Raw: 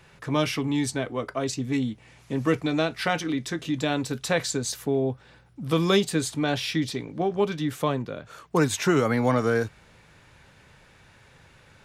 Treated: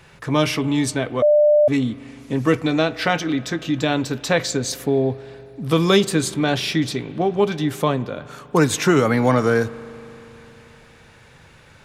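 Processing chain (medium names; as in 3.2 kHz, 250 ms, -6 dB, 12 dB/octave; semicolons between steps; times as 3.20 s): 2.74–4.71 s: peaking EQ 10 kHz -9.5 dB 0.51 oct; spring tank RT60 3.5 s, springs 39 ms, chirp 50 ms, DRR 17 dB; 1.22–1.68 s: bleep 596 Hz -16 dBFS; trim +5.5 dB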